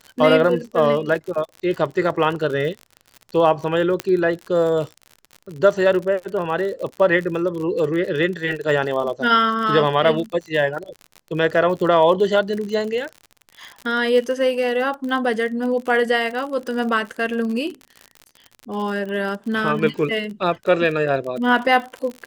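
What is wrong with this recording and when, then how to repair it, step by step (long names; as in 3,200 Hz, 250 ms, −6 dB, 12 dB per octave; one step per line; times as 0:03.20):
surface crackle 54 per second −28 dBFS
0:04.00: click −7 dBFS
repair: click removal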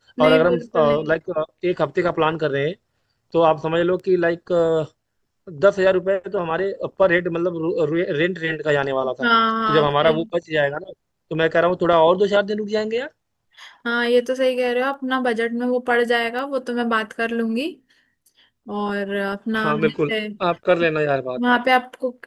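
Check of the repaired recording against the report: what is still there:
0:04.00: click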